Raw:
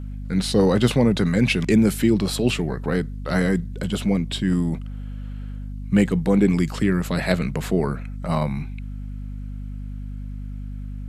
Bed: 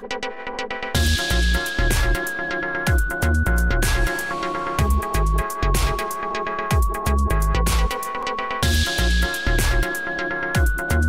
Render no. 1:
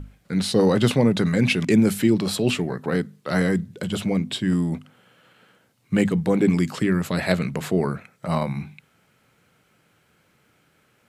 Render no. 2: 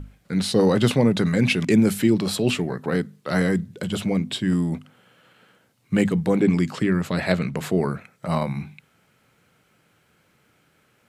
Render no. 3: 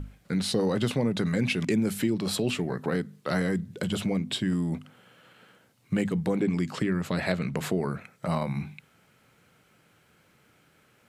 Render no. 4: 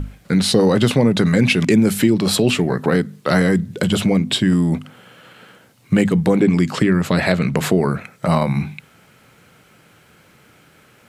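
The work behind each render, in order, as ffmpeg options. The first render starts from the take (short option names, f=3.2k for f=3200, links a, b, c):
-af "bandreject=f=50:t=h:w=6,bandreject=f=100:t=h:w=6,bandreject=f=150:t=h:w=6,bandreject=f=200:t=h:w=6,bandreject=f=250:t=h:w=6"
-filter_complex "[0:a]asettb=1/sr,asplit=3[a][b][c];[a]atrim=end=6.404[d];[b]atrim=start=6.4:end=7.57,asetpts=PTS-STARTPTS,afade=t=in:d=0.004:c=qsin,afade=t=out:st=1.166:d=0.004:c=qsin,highshelf=f=9.7k:g=-10.5[e];[c]atrim=start=7.566[f];[d][e]acrossfade=d=0.004:c1=hsin:c2=qsin[g];[g][f]acrossfade=d=0.004:c1=qsin:c2=hsin"
-af "acompressor=threshold=-26dB:ratio=2.5"
-af "volume=11.5dB,alimiter=limit=-2dB:level=0:latency=1"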